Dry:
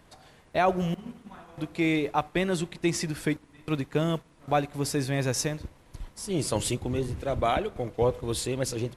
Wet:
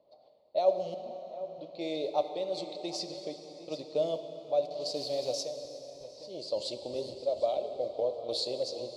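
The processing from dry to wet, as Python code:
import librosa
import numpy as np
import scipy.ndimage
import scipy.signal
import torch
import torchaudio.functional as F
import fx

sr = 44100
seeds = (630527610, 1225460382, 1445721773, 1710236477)

p1 = x + fx.echo_single(x, sr, ms=756, db=-15.0, dry=0)
p2 = fx.quant_dither(p1, sr, seeds[0], bits=6, dither='none', at=(4.65, 5.44))
p3 = fx.tremolo_random(p2, sr, seeds[1], hz=3.5, depth_pct=55)
p4 = fx.env_lowpass(p3, sr, base_hz=1700.0, full_db=-25.0)
p5 = fx.rider(p4, sr, range_db=10, speed_s=2.0)
p6 = fx.double_bandpass(p5, sr, hz=1600.0, octaves=2.9)
p7 = fx.rev_plate(p6, sr, seeds[2], rt60_s=4.4, hf_ratio=0.8, predelay_ms=0, drr_db=8.0)
y = p7 * librosa.db_to_amplitude(7.5)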